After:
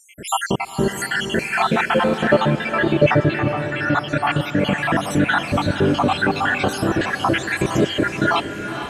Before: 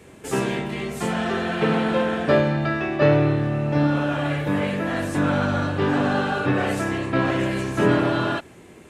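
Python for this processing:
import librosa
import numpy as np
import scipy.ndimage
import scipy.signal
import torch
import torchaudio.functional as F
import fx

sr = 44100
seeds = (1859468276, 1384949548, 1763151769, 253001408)

p1 = fx.spec_dropout(x, sr, seeds[0], share_pct=75)
p2 = fx.over_compress(p1, sr, threshold_db=-30.0, ratio=-0.5)
p3 = p1 + (p2 * librosa.db_to_amplitude(0.5))
p4 = fx.echo_diffused(p3, sr, ms=466, feedback_pct=50, wet_db=-9.0)
y = p4 * librosa.db_to_amplitude(4.5)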